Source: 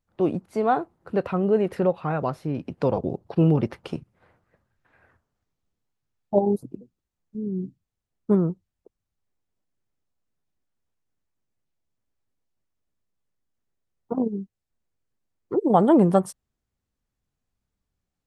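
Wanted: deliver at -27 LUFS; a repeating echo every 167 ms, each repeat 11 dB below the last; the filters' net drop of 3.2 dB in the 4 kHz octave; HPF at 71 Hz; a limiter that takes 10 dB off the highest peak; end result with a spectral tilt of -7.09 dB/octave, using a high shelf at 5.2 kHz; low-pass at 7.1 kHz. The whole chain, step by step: high-pass 71 Hz; low-pass 7.1 kHz; peaking EQ 4 kHz -6 dB; treble shelf 5.2 kHz +3.5 dB; peak limiter -14.5 dBFS; feedback delay 167 ms, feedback 28%, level -11 dB

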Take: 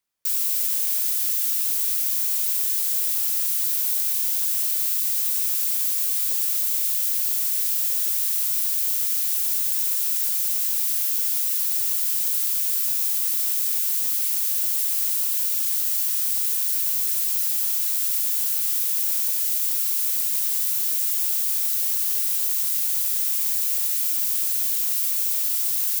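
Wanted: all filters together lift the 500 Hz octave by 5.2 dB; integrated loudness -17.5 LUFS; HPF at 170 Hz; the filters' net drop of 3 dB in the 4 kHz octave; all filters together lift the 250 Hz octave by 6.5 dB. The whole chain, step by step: high-pass 170 Hz; peaking EQ 250 Hz +7.5 dB; peaking EQ 500 Hz +5 dB; peaking EQ 4 kHz -4 dB; trim +2.5 dB

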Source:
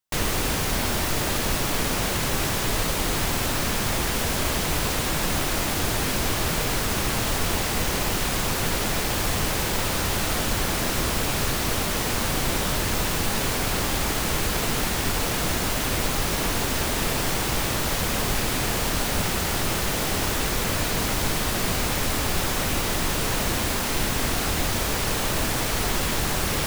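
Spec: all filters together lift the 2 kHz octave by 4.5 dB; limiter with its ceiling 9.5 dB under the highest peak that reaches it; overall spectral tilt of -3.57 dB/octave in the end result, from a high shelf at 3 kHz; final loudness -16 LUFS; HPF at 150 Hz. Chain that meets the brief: high-pass 150 Hz; peaking EQ 2 kHz +8.5 dB; treble shelf 3 kHz -8 dB; trim +13.5 dB; peak limiter -8 dBFS

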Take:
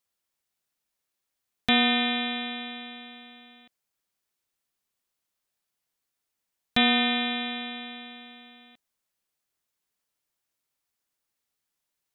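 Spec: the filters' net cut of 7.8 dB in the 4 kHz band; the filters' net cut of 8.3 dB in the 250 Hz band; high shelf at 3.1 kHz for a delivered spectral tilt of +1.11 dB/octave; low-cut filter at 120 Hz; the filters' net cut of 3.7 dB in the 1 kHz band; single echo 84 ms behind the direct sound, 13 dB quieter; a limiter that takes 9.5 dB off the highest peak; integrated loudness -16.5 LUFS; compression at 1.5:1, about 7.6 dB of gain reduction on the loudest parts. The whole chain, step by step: high-pass 120 Hz; peaking EQ 250 Hz -8 dB; peaking EQ 1 kHz -4.5 dB; treble shelf 3.1 kHz -5.5 dB; peaking EQ 4 kHz -5.5 dB; compression 1.5:1, threshold -45 dBFS; peak limiter -28.5 dBFS; delay 84 ms -13 dB; trim +24 dB

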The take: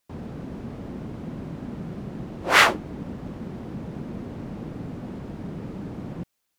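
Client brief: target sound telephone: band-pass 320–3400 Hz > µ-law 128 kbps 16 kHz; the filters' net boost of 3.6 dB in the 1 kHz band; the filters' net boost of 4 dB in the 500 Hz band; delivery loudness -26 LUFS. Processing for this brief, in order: band-pass 320–3400 Hz; peaking EQ 500 Hz +5 dB; peaking EQ 1 kHz +3.5 dB; trim -8 dB; µ-law 128 kbps 16 kHz

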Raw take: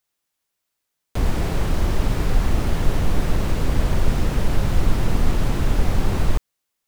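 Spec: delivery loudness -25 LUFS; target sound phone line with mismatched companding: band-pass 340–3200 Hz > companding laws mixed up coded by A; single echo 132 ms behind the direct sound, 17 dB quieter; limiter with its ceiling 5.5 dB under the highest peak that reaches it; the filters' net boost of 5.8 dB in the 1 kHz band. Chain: peaking EQ 1 kHz +7.5 dB; peak limiter -10 dBFS; band-pass 340–3200 Hz; delay 132 ms -17 dB; companding laws mixed up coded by A; trim +6 dB

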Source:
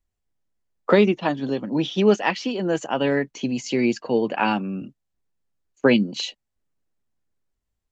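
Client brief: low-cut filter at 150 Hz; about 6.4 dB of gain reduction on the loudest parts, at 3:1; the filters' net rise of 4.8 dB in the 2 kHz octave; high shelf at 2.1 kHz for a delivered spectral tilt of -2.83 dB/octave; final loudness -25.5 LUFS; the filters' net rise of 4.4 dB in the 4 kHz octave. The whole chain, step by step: high-pass 150 Hz; peaking EQ 2 kHz +6.5 dB; treble shelf 2.1 kHz -4 dB; peaking EQ 4 kHz +7 dB; compression 3:1, threshold -19 dBFS; trim -0.5 dB

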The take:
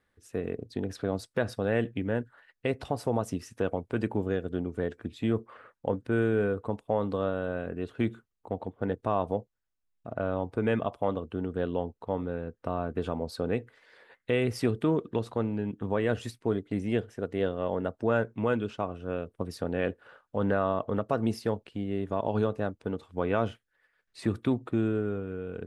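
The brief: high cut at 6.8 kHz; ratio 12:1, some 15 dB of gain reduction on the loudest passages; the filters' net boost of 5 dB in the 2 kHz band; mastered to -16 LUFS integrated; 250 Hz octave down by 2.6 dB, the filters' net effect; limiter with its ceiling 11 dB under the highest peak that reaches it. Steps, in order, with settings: low-pass 6.8 kHz; peaking EQ 250 Hz -3.5 dB; peaking EQ 2 kHz +7 dB; compression 12:1, threshold -37 dBFS; trim +29.5 dB; peak limiter -2 dBFS

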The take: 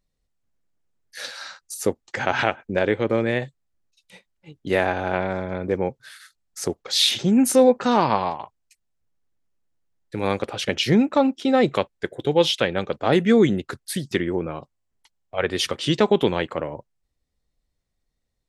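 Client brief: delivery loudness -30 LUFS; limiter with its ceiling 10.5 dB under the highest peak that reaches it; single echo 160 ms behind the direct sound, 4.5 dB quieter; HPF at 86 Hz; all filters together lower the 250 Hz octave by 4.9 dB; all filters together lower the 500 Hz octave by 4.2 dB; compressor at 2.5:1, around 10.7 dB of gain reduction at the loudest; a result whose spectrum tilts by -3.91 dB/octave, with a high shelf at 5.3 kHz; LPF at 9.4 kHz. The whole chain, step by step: high-pass 86 Hz; low-pass 9.4 kHz; peaking EQ 250 Hz -5 dB; peaking EQ 500 Hz -3.5 dB; treble shelf 5.3 kHz -3.5 dB; compression 2.5:1, threshold -32 dBFS; peak limiter -23 dBFS; delay 160 ms -4.5 dB; trim +4.5 dB

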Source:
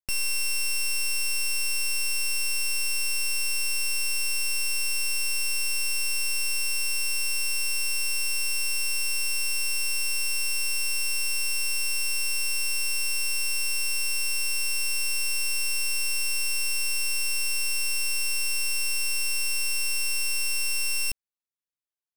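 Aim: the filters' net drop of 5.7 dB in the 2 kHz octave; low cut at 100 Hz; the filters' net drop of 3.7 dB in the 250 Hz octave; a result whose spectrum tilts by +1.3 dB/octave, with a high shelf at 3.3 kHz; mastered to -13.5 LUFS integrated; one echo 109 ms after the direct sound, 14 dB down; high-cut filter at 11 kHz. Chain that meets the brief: high-pass 100 Hz; low-pass 11 kHz; peaking EQ 250 Hz -5.5 dB; peaking EQ 2 kHz -5.5 dB; treble shelf 3.3 kHz -6.5 dB; delay 109 ms -14 dB; trim +18.5 dB

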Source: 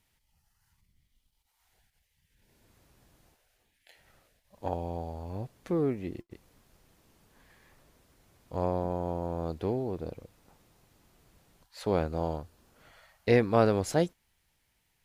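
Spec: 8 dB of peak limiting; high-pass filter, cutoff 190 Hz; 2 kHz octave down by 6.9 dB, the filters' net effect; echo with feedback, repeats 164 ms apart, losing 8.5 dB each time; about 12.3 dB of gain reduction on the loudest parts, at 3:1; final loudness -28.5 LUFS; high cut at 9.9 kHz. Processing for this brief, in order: high-pass 190 Hz; low-pass 9.9 kHz; peaking EQ 2 kHz -8.5 dB; compression 3:1, threshold -35 dBFS; peak limiter -28.5 dBFS; feedback delay 164 ms, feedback 38%, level -8.5 dB; trim +13.5 dB

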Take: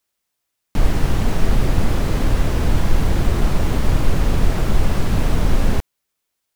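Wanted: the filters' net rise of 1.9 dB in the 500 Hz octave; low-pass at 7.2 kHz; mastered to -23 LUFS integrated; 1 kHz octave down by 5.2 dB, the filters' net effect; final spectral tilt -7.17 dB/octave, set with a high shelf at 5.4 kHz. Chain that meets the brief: low-pass 7.2 kHz; peaking EQ 500 Hz +4.5 dB; peaking EQ 1 kHz -8.5 dB; treble shelf 5.4 kHz -8 dB; trim -1.5 dB

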